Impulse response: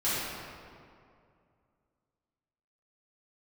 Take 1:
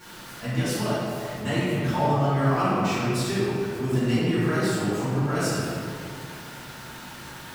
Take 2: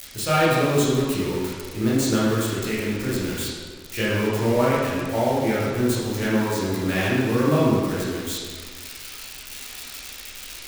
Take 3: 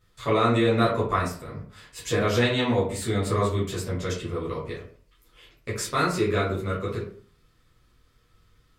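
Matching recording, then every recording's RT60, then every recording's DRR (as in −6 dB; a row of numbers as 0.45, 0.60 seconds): 1; 2.3, 1.7, 0.50 seconds; −13.0, −8.5, −9.5 decibels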